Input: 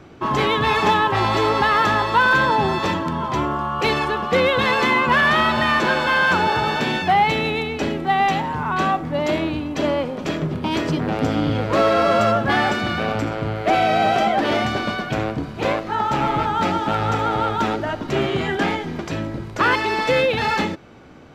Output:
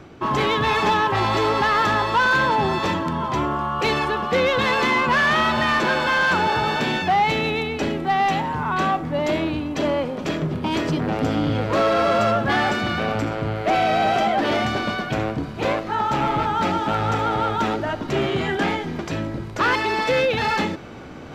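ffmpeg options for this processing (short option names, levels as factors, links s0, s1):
-af "areverse,acompressor=mode=upward:threshold=0.0355:ratio=2.5,areverse,asoftclip=type=tanh:threshold=0.251"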